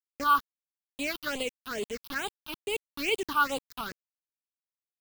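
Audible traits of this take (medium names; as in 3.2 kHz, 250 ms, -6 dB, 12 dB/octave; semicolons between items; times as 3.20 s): a quantiser's noise floor 6-bit, dither none; phasing stages 6, 2.3 Hz, lowest notch 510–1600 Hz; tremolo saw up 4.2 Hz, depth 35%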